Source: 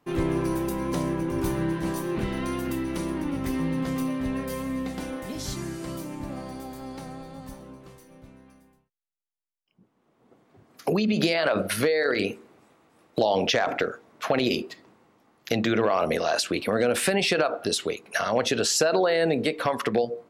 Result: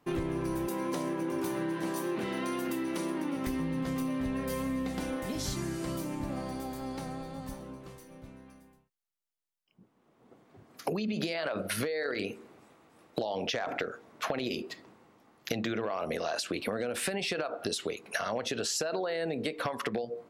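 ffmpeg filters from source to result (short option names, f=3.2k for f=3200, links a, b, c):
-filter_complex "[0:a]asettb=1/sr,asplit=3[a][b][c];[a]atrim=end=0.674[d];[b]atrim=start=0.67:end=3.47,asetpts=PTS-STARTPTS,afade=t=in:d=0.004:c=qsin,afade=t=out:st=2.796:d=0.004:c=qsin,highpass=240[e];[c]atrim=start=3.466[f];[d][e]acrossfade=d=0.004:c1=hsin:c2=qsin[g];[g][f]acrossfade=d=0.004:c1=qsin:c2=hsin,acompressor=threshold=-29dB:ratio=10"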